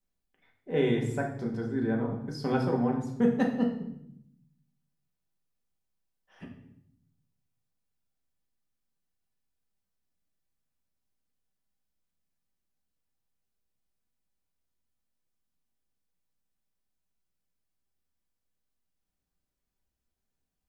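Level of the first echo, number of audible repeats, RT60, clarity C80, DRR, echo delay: none, none, 0.75 s, 9.5 dB, -0.5 dB, none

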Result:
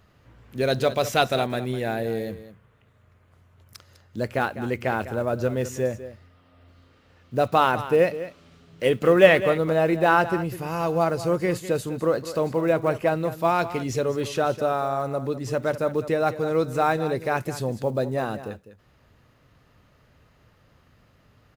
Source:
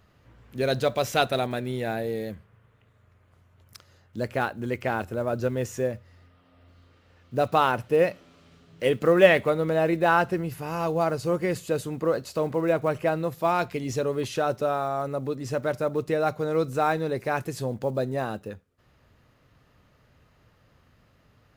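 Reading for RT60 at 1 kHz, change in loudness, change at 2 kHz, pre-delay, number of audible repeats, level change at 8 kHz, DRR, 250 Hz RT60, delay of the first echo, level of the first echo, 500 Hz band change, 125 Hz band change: none, +2.0 dB, +2.0 dB, none, 1, +2.0 dB, none, none, 0.202 s, -13.5 dB, +2.0 dB, +2.0 dB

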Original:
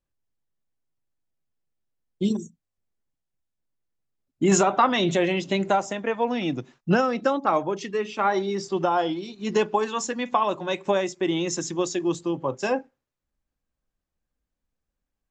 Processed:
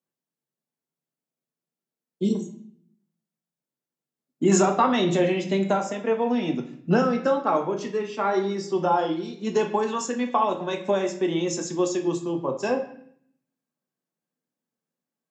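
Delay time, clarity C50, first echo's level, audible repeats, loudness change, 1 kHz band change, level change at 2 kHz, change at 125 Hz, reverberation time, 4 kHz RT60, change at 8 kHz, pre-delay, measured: none, 10.0 dB, none, none, 0.0 dB, -1.0 dB, -3.0 dB, +1.0 dB, 0.60 s, 0.60 s, -1.5 dB, 4 ms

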